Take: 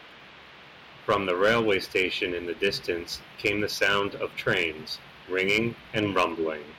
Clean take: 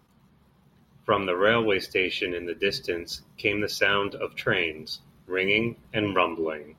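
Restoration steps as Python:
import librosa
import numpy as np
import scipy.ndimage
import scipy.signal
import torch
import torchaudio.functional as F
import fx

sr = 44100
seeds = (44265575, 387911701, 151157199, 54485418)

y = fx.fix_declip(x, sr, threshold_db=-14.5)
y = fx.noise_reduce(y, sr, print_start_s=0.32, print_end_s=0.82, reduce_db=11.0)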